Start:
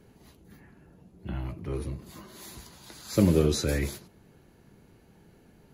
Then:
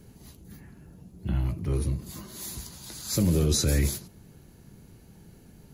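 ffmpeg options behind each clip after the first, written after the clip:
-af "bass=f=250:g=8,treble=f=4k:g=10,alimiter=limit=-15.5dB:level=0:latency=1:release=12"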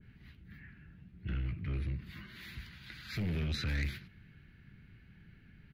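-af "firequalizer=gain_entry='entry(110,0);entry(490,-14);entry(960,-11);entry(1500,7);entry(2100,9);entry(6700,-28);entry(9800,-29);entry(15000,-19)':delay=0.05:min_phase=1,asoftclip=type=tanh:threshold=-25.5dB,adynamicequalizer=threshold=0.00178:dfrequency=1600:dqfactor=0.7:tfrequency=1600:tqfactor=0.7:attack=5:release=100:ratio=0.375:range=1.5:mode=boostabove:tftype=highshelf,volume=-4.5dB"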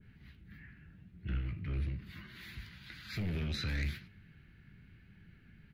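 -af "flanger=delay=9.7:depth=9.7:regen=72:speed=0.97:shape=sinusoidal,volume=3.5dB"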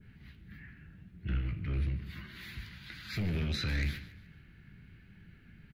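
-af "aecho=1:1:144|288|432:0.15|0.0584|0.0228,volume=3dB"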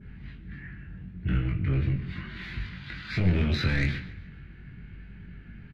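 -filter_complex "[0:a]aeval=exprs='val(0)+0.00126*(sin(2*PI*50*n/s)+sin(2*PI*2*50*n/s)/2+sin(2*PI*3*50*n/s)/3+sin(2*PI*4*50*n/s)/4+sin(2*PI*5*50*n/s)/5)':c=same,adynamicsmooth=sensitivity=1.5:basefreq=3.5k,asplit=2[a][b];[b]adelay=22,volume=-3dB[c];[a][c]amix=inputs=2:normalize=0,volume=7.5dB"

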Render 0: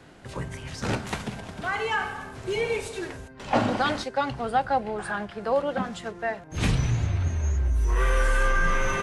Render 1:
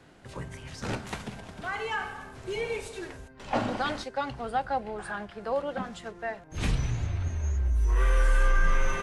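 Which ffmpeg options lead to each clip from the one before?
-af "asubboost=boost=2:cutoff=65,volume=-5dB"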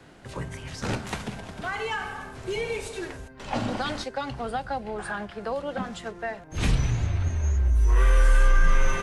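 -filter_complex "[0:a]acrossover=split=240|3000[a][b][c];[b]acompressor=threshold=-32dB:ratio=6[d];[a][d][c]amix=inputs=3:normalize=0,volume=4.5dB"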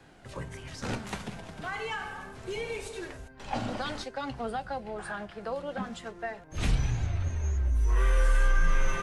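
-af "flanger=delay=1.2:depth=5.2:regen=74:speed=0.29:shape=sinusoidal"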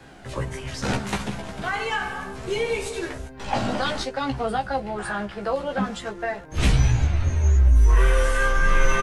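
-filter_complex "[0:a]asplit=2[a][b];[b]adelay=15,volume=-3.5dB[c];[a][c]amix=inputs=2:normalize=0,volume=7.5dB"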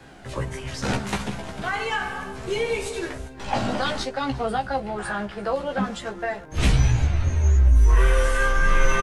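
-af "aecho=1:1:347:0.075"

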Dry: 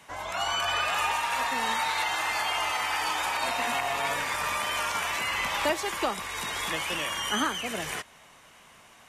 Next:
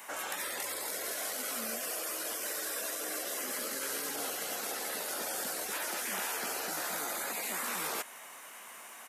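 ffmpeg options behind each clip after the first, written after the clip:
-af "aemphasis=mode=production:type=riaa,afftfilt=real='re*lt(hypot(re,im),0.0447)':imag='im*lt(hypot(re,im),0.0447)':win_size=1024:overlap=0.75,firequalizer=gain_entry='entry(120,0);entry(220,13);entry(1800,11);entry(3300,3);entry(4900,2);entry(8900,5)':delay=0.05:min_phase=1,volume=-8dB"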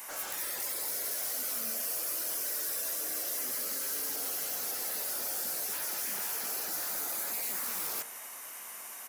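-af "asoftclip=type=hard:threshold=-39dB,aexciter=amount=2.6:drive=2.1:freq=4.7k,bandreject=f=57.94:t=h:w=4,bandreject=f=115.88:t=h:w=4,bandreject=f=173.82:t=h:w=4,bandreject=f=231.76:t=h:w=4,bandreject=f=289.7:t=h:w=4,bandreject=f=347.64:t=h:w=4,bandreject=f=405.58:t=h:w=4,bandreject=f=463.52:t=h:w=4,bandreject=f=521.46:t=h:w=4,bandreject=f=579.4:t=h:w=4,bandreject=f=637.34:t=h:w=4,bandreject=f=695.28:t=h:w=4,bandreject=f=753.22:t=h:w=4,bandreject=f=811.16:t=h:w=4,bandreject=f=869.1:t=h:w=4,bandreject=f=927.04:t=h:w=4,bandreject=f=984.98:t=h:w=4,bandreject=f=1.04292k:t=h:w=4,bandreject=f=1.10086k:t=h:w=4,bandreject=f=1.1588k:t=h:w=4,bandreject=f=1.21674k:t=h:w=4,bandreject=f=1.27468k:t=h:w=4,bandreject=f=1.33262k:t=h:w=4,bandreject=f=1.39056k:t=h:w=4,bandreject=f=1.4485k:t=h:w=4,bandreject=f=1.50644k:t=h:w=4,bandreject=f=1.56438k:t=h:w=4,bandreject=f=1.62232k:t=h:w=4,bandreject=f=1.68026k:t=h:w=4,bandreject=f=1.7382k:t=h:w=4,bandreject=f=1.79614k:t=h:w=4,bandreject=f=1.85408k:t=h:w=4,bandreject=f=1.91202k:t=h:w=4,bandreject=f=1.96996k:t=h:w=4"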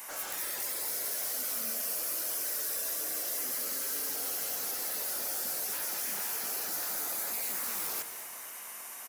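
-af "aecho=1:1:215|430|645|860|1075:0.251|0.131|0.0679|0.0353|0.0184"

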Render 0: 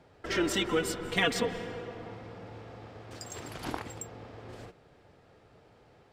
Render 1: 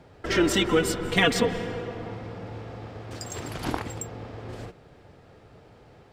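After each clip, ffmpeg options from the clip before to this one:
-af "lowshelf=f=260:g=4.5,volume=5.5dB"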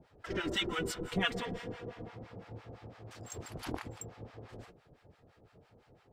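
-filter_complex "[0:a]acrossover=split=790[a][b];[a]aeval=exprs='val(0)*(1-1/2+1/2*cos(2*PI*5.9*n/s))':c=same[c];[b]aeval=exprs='val(0)*(1-1/2-1/2*cos(2*PI*5.9*n/s))':c=same[d];[c][d]amix=inputs=2:normalize=0,volume=-6dB"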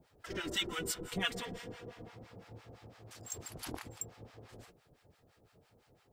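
-af "crystalizer=i=2.5:c=0,volume=-5dB"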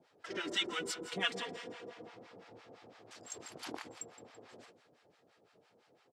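-af "highpass=260,lowpass=6.4k,aecho=1:1:167|334|501|668:0.178|0.0765|0.0329|0.0141,volume=1dB"

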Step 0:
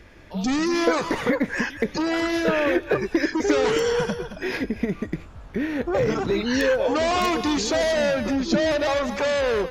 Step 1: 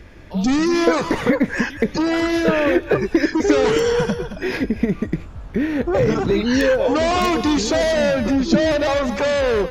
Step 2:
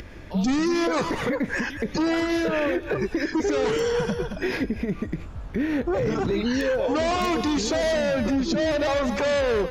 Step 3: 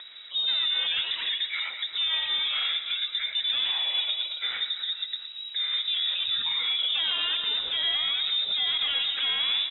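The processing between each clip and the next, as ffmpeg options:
-af "lowshelf=f=330:g=5.5,volume=2.5dB"
-af "acompressor=mode=upward:threshold=-34dB:ratio=2.5,alimiter=limit=-15dB:level=0:latency=1:release=93,volume=-1.5dB"
-af "aecho=1:1:116|232|348|464|580:0.299|0.149|0.0746|0.0373|0.0187,lowpass=f=3.3k:t=q:w=0.5098,lowpass=f=3.3k:t=q:w=0.6013,lowpass=f=3.3k:t=q:w=0.9,lowpass=f=3.3k:t=q:w=2.563,afreqshift=-3900,volume=-4.5dB"

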